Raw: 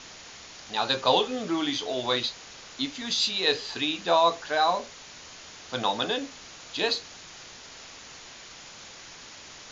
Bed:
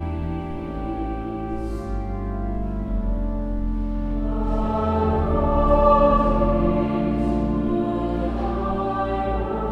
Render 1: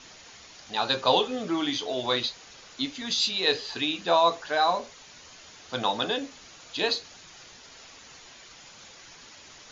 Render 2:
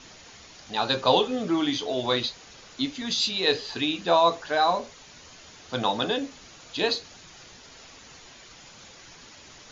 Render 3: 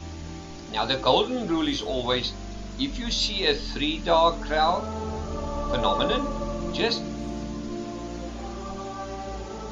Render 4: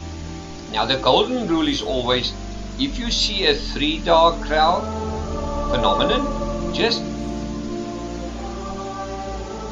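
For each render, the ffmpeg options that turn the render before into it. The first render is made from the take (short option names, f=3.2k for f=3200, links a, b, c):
-af "afftdn=nr=6:nf=-46"
-af "lowshelf=f=430:g=5.5"
-filter_complex "[1:a]volume=-11dB[a];[0:a][a]amix=inputs=2:normalize=0"
-af "volume=5.5dB,alimiter=limit=-3dB:level=0:latency=1"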